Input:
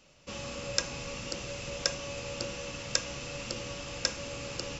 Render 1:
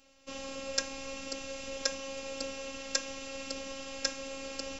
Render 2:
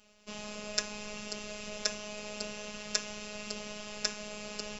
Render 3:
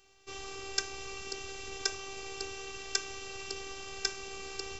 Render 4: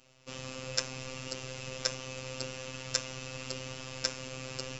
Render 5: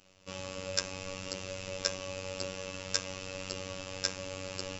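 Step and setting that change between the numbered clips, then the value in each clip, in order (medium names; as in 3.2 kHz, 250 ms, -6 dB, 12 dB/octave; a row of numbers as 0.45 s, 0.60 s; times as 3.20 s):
robot voice, frequency: 270 Hz, 210 Hz, 390 Hz, 130 Hz, 94 Hz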